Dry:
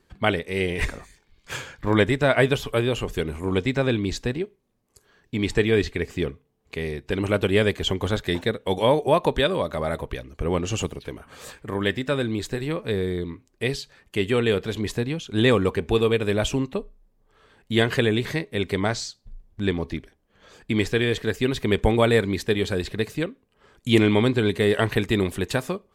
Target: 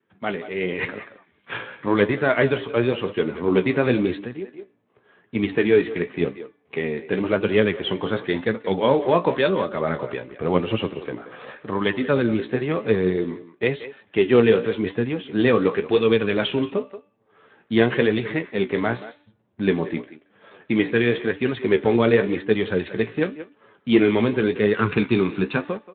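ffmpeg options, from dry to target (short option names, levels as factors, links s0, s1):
-filter_complex "[0:a]asoftclip=type=tanh:threshold=0.398,asplit=3[s0][s1][s2];[s0]afade=t=out:st=15.7:d=0.02[s3];[s1]aemphasis=mode=production:type=75fm,afade=t=in:st=15.7:d=0.02,afade=t=out:st=16.6:d=0.02[s4];[s2]afade=t=in:st=16.6:d=0.02[s5];[s3][s4][s5]amix=inputs=3:normalize=0,asplit=2[s6][s7];[s7]adelay=180,highpass=300,lowpass=3400,asoftclip=type=hard:threshold=0.133,volume=0.224[s8];[s6][s8]amix=inputs=2:normalize=0,adynamicequalizer=threshold=0.0112:dfrequency=690:dqfactor=2.1:tfrequency=690:tqfactor=2.1:attack=5:release=100:ratio=0.375:range=2.5:mode=cutabove:tftype=bell,asettb=1/sr,asplit=3[s9][s10][s11];[s9]atrim=end=4.204[s12];[s10]atrim=start=4.2:end=5.35,asetpts=PTS-STARTPTS,afade=t=in:d=0.004:c=qsin,afade=t=out:st=1.146:d=0.004:c=qsin,acompressor=threshold=0.02:ratio=6[s13];[s11]atrim=start=5.346[s14];[s12][s13]acrossfade=d=0.004:c1=hsin:c2=qsin[s15];[s15][s14]acrossfade=d=0.004:c1=qsin:c2=hsin,asplit=3[s16][s17][s18];[s16]afade=t=out:st=24.74:d=0.02[s19];[s17]aecho=1:1:0.8:0.77,afade=t=in:st=24.74:d=0.02,afade=t=out:st=25.56:d=0.02[s20];[s18]afade=t=in:st=25.56:d=0.02[s21];[s19][s20][s21]amix=inputs=3:normalize=0,highpass=170,lowpass=2800,bandreject=f=290.7:t=h:w=4,bandreject=f=581.4:t=h:w=4,bandreject=f=872.1:t=h:w=4,bandreject=f=1162.8:t=h:w=4,bandreject=f=1453.5:t=h:w=4,bandreject=f=1744.2:t=h:w=4,bandreject=f=2034.9:t=h:w=4,bandreject=f=2325.6:t=h:w=4,bandreject=f=2616.3:t=h:w=4,bandreject=f=2907:t=h:w=4,bandreject=f=3197.7:t=h:w=4,bandreject=f=3488.4:t=h:w=4,bandreject=f=3779.1:t=h:w=4,bandreject=f=4069.8:t=h:w=4,bandreject=f=4360.5:t=h:w=4,bandreject=f=4651.2:t=h:w=4,bandreject=f=4941.9:t=h:w=4,dynaudnorm=f=140:g=7:m=3.55,flanger=delay=8.9:depth=8.9:regen=43:speed=0.93:shape=sinusoidal" -ar 8000 -c:a libspeex -b:a 15k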